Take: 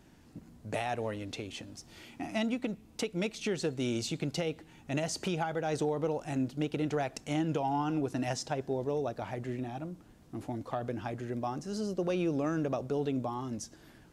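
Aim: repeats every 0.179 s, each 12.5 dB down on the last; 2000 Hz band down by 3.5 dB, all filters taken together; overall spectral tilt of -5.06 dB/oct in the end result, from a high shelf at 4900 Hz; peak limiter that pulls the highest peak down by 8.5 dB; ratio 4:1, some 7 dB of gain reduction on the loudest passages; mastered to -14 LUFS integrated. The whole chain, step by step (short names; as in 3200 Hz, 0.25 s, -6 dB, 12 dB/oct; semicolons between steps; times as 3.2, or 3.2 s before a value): bell 2000 Hz -6 dB; high shelf 4900 Hz +6.5 dB; compressor 4:1, threshold -36 dBFS; limiter -30.5 dBFS; feedback echo 0.179 s, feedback 24%, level -12.5 dB; gain +27 dB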